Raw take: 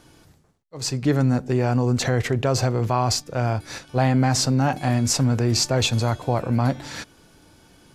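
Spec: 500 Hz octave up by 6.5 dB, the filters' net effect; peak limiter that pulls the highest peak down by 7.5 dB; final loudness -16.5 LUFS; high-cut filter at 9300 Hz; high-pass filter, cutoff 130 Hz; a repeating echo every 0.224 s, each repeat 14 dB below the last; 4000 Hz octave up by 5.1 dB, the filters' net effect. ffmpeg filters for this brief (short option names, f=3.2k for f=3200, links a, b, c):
-af "highpass=130,lowpass=9.3k,equalizer=f=500:t=o:g=8,equalizer=f=4k:t=o:g=6.5,alimiter=limit=-12dB:level=0:latency=1,aecho=1:1:224|448:0.2|0.0399,volume=6dB"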